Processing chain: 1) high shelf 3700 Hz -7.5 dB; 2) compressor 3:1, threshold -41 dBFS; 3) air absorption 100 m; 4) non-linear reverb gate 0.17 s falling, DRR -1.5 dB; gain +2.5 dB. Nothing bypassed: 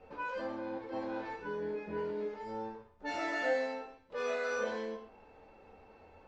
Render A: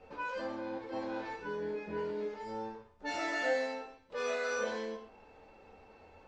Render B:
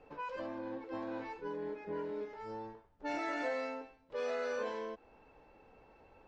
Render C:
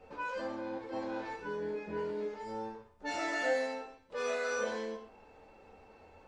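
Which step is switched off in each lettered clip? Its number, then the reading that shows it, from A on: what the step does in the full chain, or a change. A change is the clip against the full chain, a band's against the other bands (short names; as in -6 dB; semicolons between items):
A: 1, 4 kHz band +3.5 dB; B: 4, crest factor change -2.5 dB; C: 3, 4 kHz band +2.5 dB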